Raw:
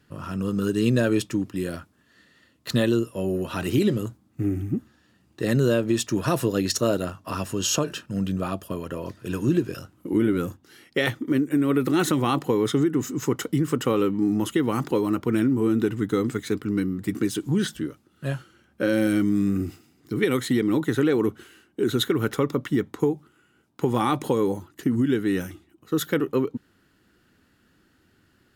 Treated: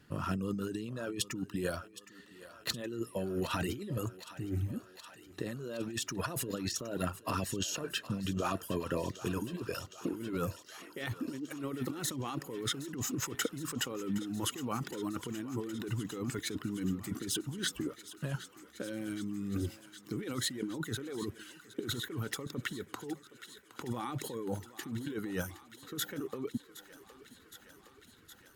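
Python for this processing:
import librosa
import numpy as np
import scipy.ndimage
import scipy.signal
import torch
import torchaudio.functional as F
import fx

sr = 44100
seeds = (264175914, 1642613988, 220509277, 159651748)

y = fx.dereverb_blind(x, sr, rt60_s=0.77)
y = fx.over_compress(y, sr, threshold_db=-31.0, ratio=-1.0)
y = fx.echo_thinned(y, sr, ms=766, feedback_pct=81, hz=440.0, wet_db=-15.0)
y = y * librosa.db_to_amplitude(-6.0)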